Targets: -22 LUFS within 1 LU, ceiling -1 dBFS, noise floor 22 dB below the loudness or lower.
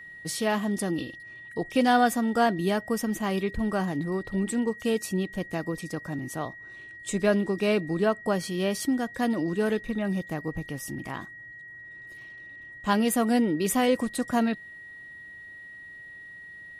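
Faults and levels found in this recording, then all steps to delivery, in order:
steady tone 1.9 kHz; tone level -42 dBFS; loudness -27.5 LUFS; peak level -9.0 dBFS; loudness target -22.0 LUFS
-> band-stop 1.9 kHz, Q 30; trim +5.5 dB

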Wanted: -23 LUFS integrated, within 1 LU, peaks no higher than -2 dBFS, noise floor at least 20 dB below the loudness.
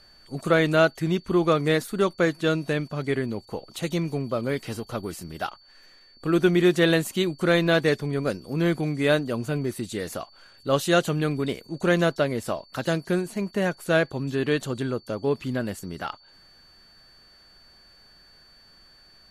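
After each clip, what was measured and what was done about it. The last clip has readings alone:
steady tone 4.5 kHz; tone level -53 dBFS; loudness -25.0 LUFS; peak level -7.0 dBFS; loudness target -23.0 LUFS
-> band-stop 4.5 kHz, Q 30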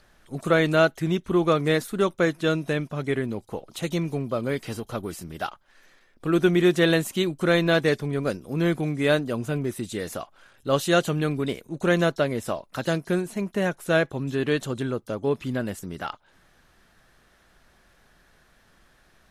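steady tone not found; loudness -25.0 LUFS; peak level -7.0 dBFS; loudness target -23.0 LUFS
-> trim +2 dB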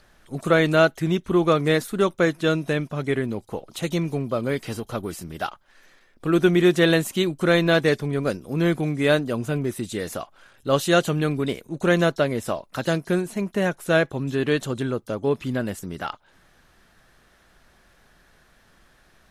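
loudness -23.0 LUFS; peak level -5.0 dBFS; noise floor -59 dBFS

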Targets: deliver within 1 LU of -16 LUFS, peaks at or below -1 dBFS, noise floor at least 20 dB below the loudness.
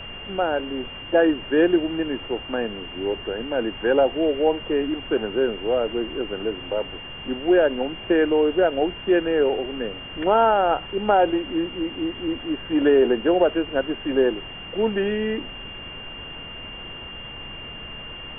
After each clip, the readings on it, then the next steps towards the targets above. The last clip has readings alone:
steady tone 2.8 kHz; tone level -36 dBFS; noise floor -37 dBFS; noise floor target -43 dBFS; loudness -22.5 LUFS; peak level -6.0 dBFS; loudness target -16.0 LUFS
-> band-stop 2.8 kHz, Q 30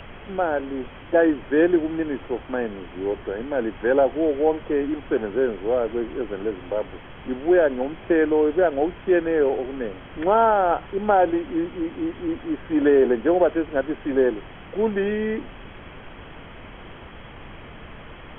steady tone not found; noise floor -42 dBFS; noise floor target -43 dBFS
-> noise print and reduce 6 dB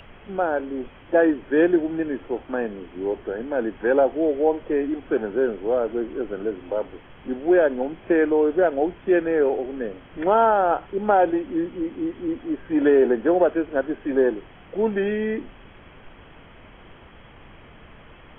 noise floor -47 dBFS; loudness -22.5 LUFS; peak level -6.5 dBFS; loudness target -16.0 LUFS
-> trim +6.5 dB; peak limiter -1 dBFS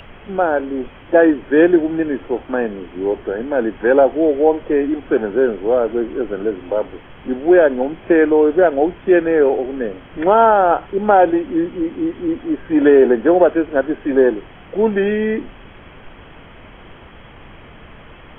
loudness -16.5 LUFS; peak level -1.0 dBFS; noise floor -41 dBFS

